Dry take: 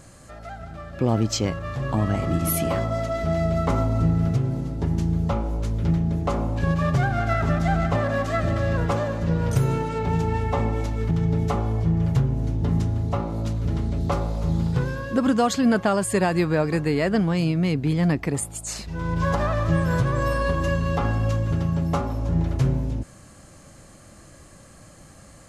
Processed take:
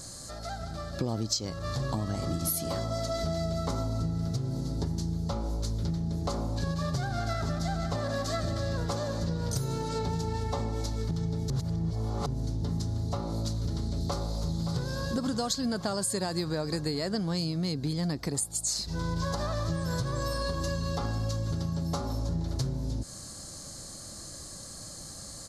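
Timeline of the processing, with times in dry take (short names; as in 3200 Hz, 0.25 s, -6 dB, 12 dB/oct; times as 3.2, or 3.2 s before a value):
11.5–12.26 reverse
14.02–15.09 echo throw 0.57 s, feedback 65%, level -9 dB
whole clip: resonant high shelf 3400 Hz +8.5 dB, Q 3; compressor, threshold -28 dBFS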